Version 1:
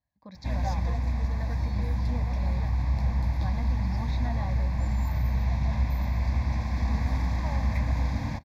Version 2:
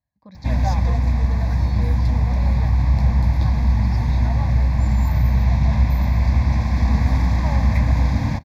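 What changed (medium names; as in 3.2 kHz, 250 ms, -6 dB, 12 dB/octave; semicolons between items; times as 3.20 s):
background +7.5 dB; master: add peaking EQ 130 Hz +3.5 dB 1.9 oct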